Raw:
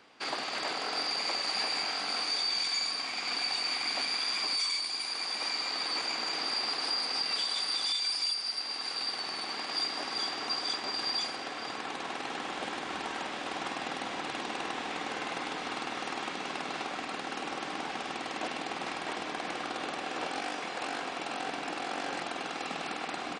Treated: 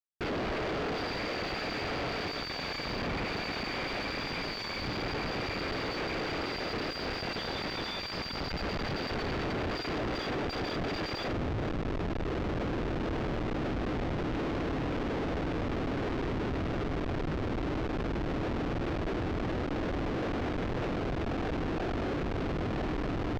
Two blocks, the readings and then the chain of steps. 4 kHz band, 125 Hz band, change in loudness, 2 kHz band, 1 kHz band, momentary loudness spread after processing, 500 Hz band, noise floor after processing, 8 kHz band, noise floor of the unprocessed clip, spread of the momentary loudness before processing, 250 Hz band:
−9.0 dB, +21.0 dB, −1.5 dB, −1.0 dB, −1.5 dB, 1 LU, +7.0 dB, −37 dBFS, −12.5 dB, −39 dBFS, 8 LU, +9.5 dB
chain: high-shelf EQ 2,600 Hz −4 dB
phaser with its sweep stopped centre 390 Hz, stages 4
comparator with hysteresis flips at −38 dBFS
high-frequency loss of the air 210 metres
level +7.5 dB

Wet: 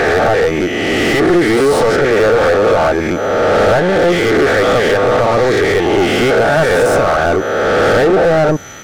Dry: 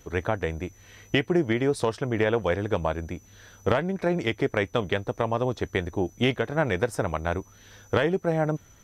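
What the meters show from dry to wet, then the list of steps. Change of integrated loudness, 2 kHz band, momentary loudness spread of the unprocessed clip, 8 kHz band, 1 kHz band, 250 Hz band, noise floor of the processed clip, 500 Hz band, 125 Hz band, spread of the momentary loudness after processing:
+15.0 dB, +16.5 dB, 7 LU, +17.5 dB, +17.0 dB, +12.5 dB, −18 dBFS, +16.5 dB, +8.5 dB, 3 LU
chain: peak hold with a rise ahead of every peak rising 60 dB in 1.35 s
mid-hump overdrive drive 32 dB, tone 2,100 Hz, clips at −5.5 dBFS
dynamic equaliser 2,600 Hz, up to −6 dB, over −32 dBFS, Q 1.2
Butterworth band-reject 1,000 Hz, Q 5.7
level +3 dB

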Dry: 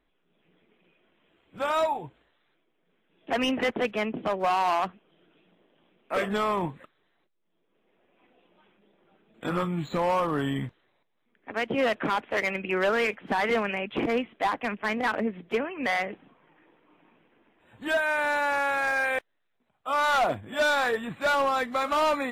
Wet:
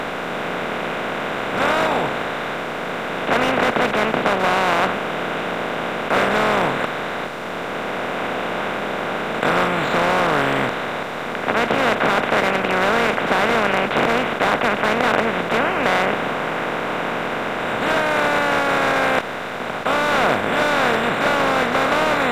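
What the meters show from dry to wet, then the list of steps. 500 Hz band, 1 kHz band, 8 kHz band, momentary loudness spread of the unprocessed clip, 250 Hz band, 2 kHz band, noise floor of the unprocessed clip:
+9.0 dB, +9.0 dB, +10.0 dB, 8 LU, +8.5 dB, +10.0 dB, −74 dBFS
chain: compressor on every frequency bin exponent 0.2
low-shelf EQ 92 Hz +5.5 dB
level −2.5 dB

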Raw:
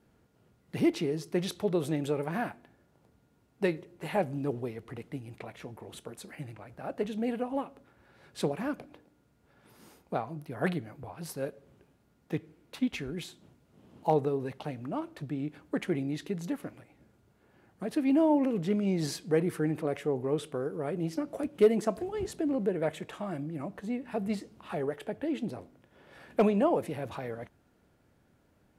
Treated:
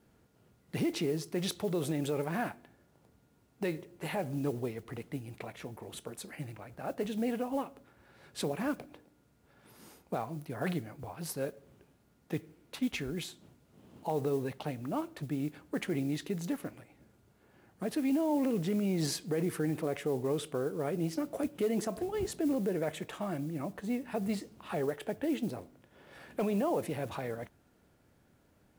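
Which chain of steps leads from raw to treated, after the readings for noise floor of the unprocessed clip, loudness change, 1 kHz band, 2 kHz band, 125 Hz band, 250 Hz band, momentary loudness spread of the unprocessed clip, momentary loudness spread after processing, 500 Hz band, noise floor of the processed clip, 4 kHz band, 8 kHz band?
−68 dBFS, −3.0 dB, −3.5 dB, −1.5 dB, −1.5 dB, −2.5 dB, 16 LU, 12 LU, −3.5 dB, −68 dBFS, +1.0 dB, +3.0 dB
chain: brickwall limiter −23.5 dBFS, peak gain reduction 10.5 dB
noise that follows the level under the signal 28 dB
high-shelf EQ 5,000 Hz +4 dB

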